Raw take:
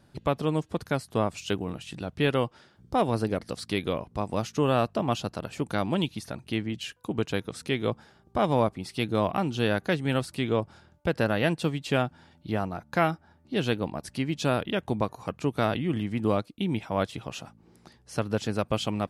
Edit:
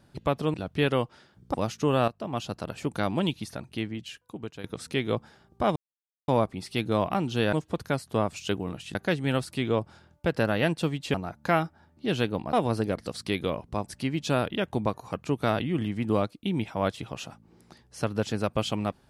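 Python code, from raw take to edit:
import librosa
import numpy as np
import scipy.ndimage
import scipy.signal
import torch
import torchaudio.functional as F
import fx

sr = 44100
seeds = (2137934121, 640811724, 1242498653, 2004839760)

y = fx.edit(x, sr, fx.move(start_s=0.54, length_s=1.42, to_s=9.76),
    fx.move(start_s=2.96, length_s=1.33, to_s=14.01),
    fx.fade_in_from(start_s=4.83, length_s=0.59, floor_db=-12.5),
    fx.fade_out_to(start_s=6.2, length_s=1.19, floor_db=-13.5),
    fx.insert_silence(at_s=8.51, length_s=0.52),
    fx.cut(start_s=11.95, length_s=0.67), tone=tone)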